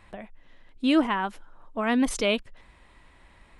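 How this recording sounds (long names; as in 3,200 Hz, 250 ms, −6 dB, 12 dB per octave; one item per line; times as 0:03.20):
background noise floor −56 dBFS
spectral slope −3.5 dB per octave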